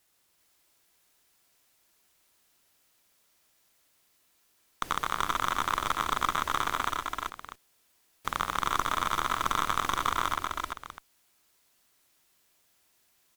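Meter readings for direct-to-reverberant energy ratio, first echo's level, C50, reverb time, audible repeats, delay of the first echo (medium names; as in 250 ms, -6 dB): no reverb, -7.0 dB, no reverb, no reverb, 3, 122 ms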